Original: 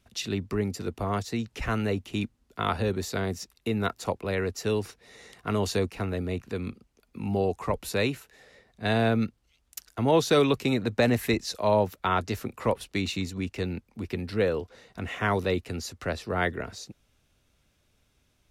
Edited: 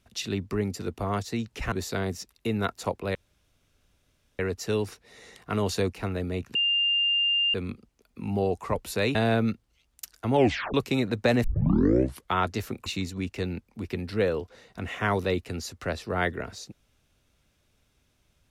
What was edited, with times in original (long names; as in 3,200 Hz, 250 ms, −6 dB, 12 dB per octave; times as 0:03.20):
0:01.72–0:02.93: remove
0:04.36: splice in room tone 1.24 s
0:06.52: insert tone 2,800 Hz −21 dBFS 0.99 s
0:08.13–0:08.89: remove
0:10.09: tape stop 0.39 s
0:11.18: tape start 0.91 s
0:12.60–0:13.06: remove